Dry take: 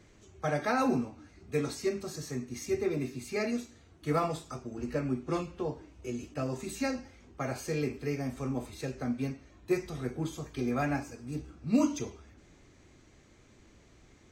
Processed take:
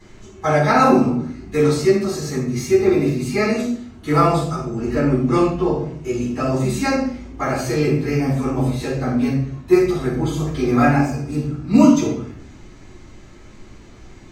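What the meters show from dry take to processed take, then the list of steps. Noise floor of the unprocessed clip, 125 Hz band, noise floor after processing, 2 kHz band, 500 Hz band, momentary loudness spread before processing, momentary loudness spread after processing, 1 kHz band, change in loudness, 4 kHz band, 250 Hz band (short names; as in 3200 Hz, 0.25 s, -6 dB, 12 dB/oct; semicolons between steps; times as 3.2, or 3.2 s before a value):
-60 dBFS, +16.5 dB, -42 dBFS, +13.5 dB, +15.0 dB, 11 LU, 11 LU, +16.0 dB, +15.0 dB, +13.0 dB, +15.5 dB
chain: shoebox room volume 620 m³, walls furnished, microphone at 9.8 m; gain +2 dB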